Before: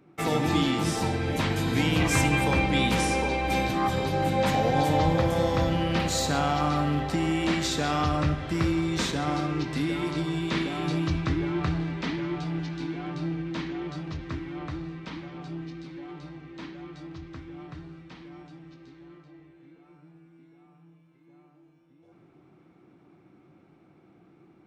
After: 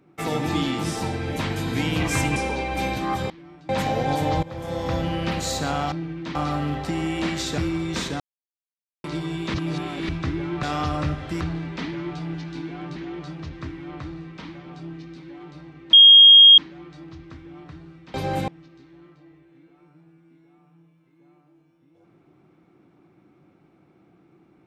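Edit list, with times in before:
2.36–3.09 s: delete
4.03–4.37 s: swap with 18.17–18.56 s
5.11–5.65 s: fade in, from -20 dB
7.83–8.61 s: move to 11.66 s
9.23–10.07 s: mute
10.57–11.12 s: reverse
13.21–13.64 s: move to 6.60 s
16.61 s: add tone 3.25 kHz -6 dBFS 0.65 s

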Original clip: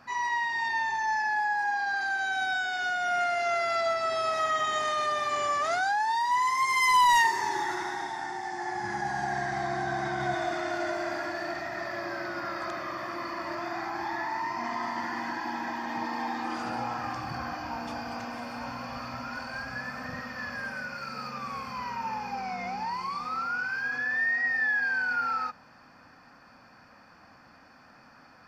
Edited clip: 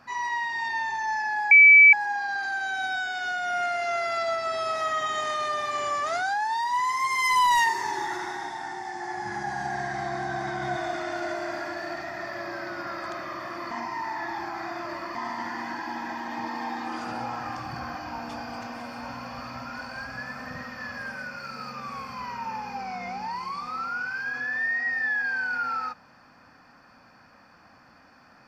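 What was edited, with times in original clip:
1.51 s: add tone 2.3 kHz -9 dBFS 0.42 s
13.29–14.73 s: reverse

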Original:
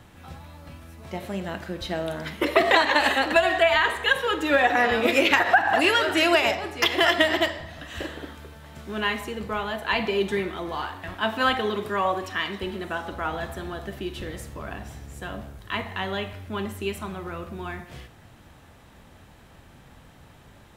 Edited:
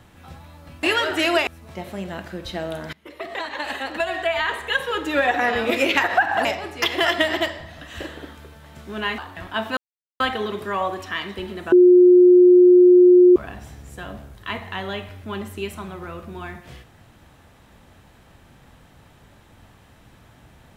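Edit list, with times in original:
2.29–4.38 s: fade in, from -23.5 dB
5.81–6.45 s: move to 0.83 s
9.18–10.85 s: delete
11.44 s: insert silence 0.43 s
12.96–14.60 s: bleep 359 Hz -7.5 dBFS

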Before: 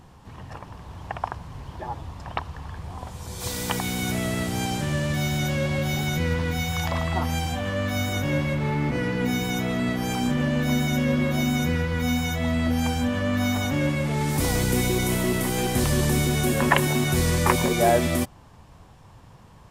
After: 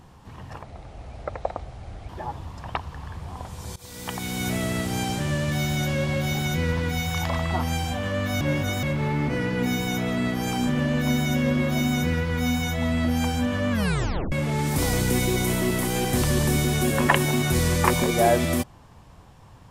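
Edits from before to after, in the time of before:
0.63–1.71 s: speed 74%
3.38–4.11 s: fade in, from -19.5 dB
8.03–8.45 s: reverse
13.33 s: tape stop 0.61 s

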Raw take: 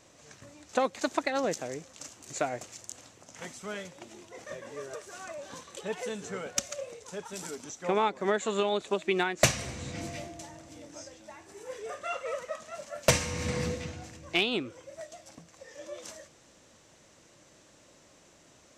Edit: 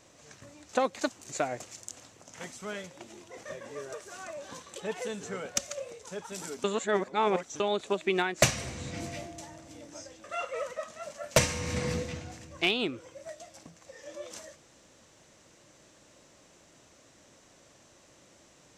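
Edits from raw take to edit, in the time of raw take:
1.10–2.11 s: delete
7.65–8.61 s: reverse
11.25–11.96 s: delete

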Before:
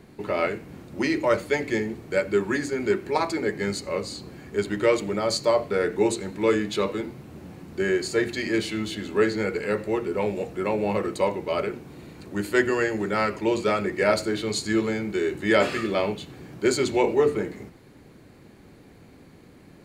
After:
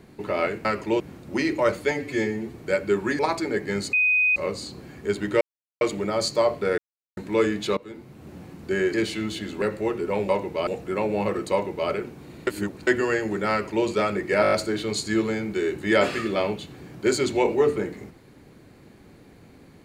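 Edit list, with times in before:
1.56–1.98 s: stretch 1.5×
2.63–3.11 s: delete
3.85 s: add tone 2.5 kHz -17 dBFS 0.43 s
4.90 s: insert silence 0.40 s
5.87–6.26 s: mute
6.86–7.42 s: fade in, from -19.5 dB
8.03–8.50 s: delete
9.18–9.69 s: delete
11.21–11.59 s: copy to 10.36 s
12.16–12.56 s: reverse
13.20–13.55 s: copy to 0.65 s
14.11 s: stutter 0.02 s, 6 plays

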